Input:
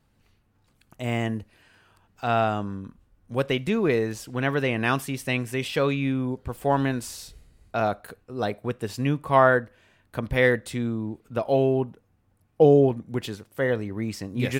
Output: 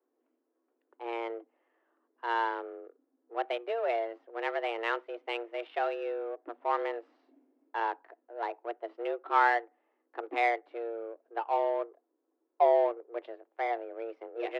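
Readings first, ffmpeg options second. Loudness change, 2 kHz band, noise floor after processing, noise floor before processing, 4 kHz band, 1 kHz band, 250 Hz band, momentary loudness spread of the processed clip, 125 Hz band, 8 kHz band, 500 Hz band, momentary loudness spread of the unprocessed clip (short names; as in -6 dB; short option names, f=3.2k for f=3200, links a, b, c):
-7.5 dB, -7.0 dB, -80 dBFS, -66 dBFS, -10.5 dB, -2.0 dB, -17.5 dB, 15 LU, under -40 dB, under -25 dB, -8.0 dB, 15 LU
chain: -filter_complex "[0:a]afreqshift=230,adynamicsmooth=sensitivity=2:basefreq=1k,acrossover=split=380 3700:gain=0.158 1 0.0631[a][b][c];[a][b][c]amix=inputs=3:normalize=0,volume=-6.5dB"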